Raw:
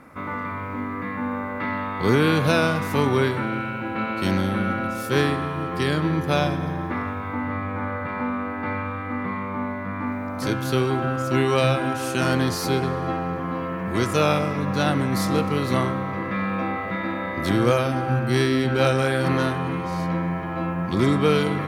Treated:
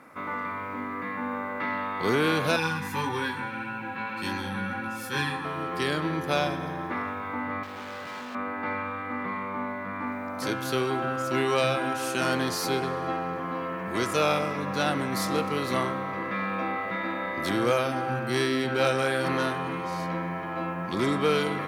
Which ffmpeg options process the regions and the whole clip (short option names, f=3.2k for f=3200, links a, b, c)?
-filter_complex "[0:a]asettb=1/sr,asplit=3[a][b][c];[a]atrim=end=2.564[d];[b]atrim=start=2.56:end=5.45,asetpts=PTS-STARTPTS,afade=t=in:d=0.004:c=qsin,afade=t=out:st=2.886:d=0.004:c=qsin,aecho=1:1:1.2:0.57,atrim=end_sample=127449,flanger=delay=18:depth=2.1:speed=1.7,asuperstop=centerf=660:order=12:qfactor=3.2[e];[c]atrim=start=5.446[f];[d][e]acrossfade=d=0.004:c1=hsin:c2=qsin[g];[g][f]acrossfade=d=0.004:c1=qsin:c2=hsin,asettb=1/sr,asplit=3[h][i][j];[h]atrim=end=7.634[k];[i]atrim=start=7.63:end=8.35,asetpts=PTS-STARTPTS,afade=t=in:d=0.004:c=qsin,afade=t=out:st=0.716:d=0.004:c=qsin,highpass=62,acrusher=bits=5:mode=log:mix=0:aa=0.000001,asoftclip=type=hard:threshold=-33dB[l];[j]atrim=start=8.346[m];[k][l]acrossfade=d=0.004:c1=hsin:c2=qsin[n];[n][m]acrossfade=d=0.004:c1=qsin:c2=hsin,acontrast=71,highpass=f=360:p=1,volume=-8dB"